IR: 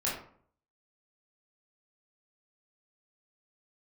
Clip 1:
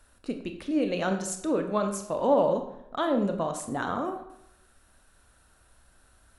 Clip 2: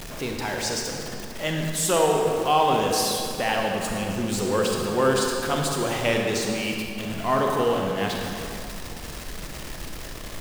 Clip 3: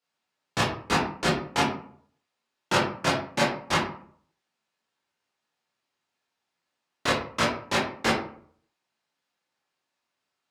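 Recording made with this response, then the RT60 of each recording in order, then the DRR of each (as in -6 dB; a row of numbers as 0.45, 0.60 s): 3; 0.80, 2.7, 0.55 s; 5.5, 0.5, -7.0 dB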